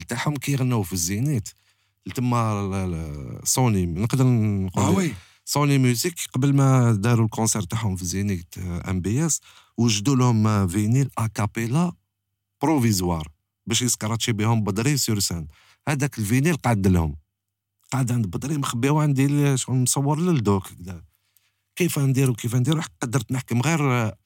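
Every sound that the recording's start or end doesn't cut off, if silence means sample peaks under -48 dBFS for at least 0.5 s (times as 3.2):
12.61–17.2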